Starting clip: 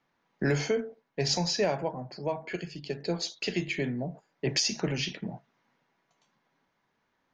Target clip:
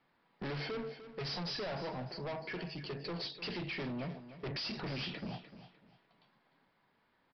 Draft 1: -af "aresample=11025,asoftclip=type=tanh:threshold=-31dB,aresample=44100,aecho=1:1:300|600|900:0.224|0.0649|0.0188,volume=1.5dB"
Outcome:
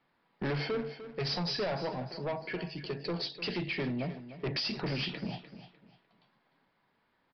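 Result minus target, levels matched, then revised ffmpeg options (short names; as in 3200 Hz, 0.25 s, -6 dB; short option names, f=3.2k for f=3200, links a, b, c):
soft clip: distortion -4 dB
-af "aresample=11025,asoftclip=type=tanh:threshold=-39dB,aresample=44100,aecho=1:1:300|600|900:0.224|0.0649|0.0188,volume=1.5dB"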